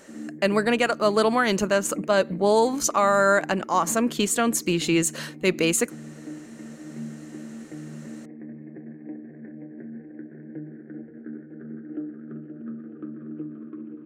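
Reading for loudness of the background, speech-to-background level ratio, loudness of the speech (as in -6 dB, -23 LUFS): -39.5 LUFS, 17.0 dB, -22.5 LUFS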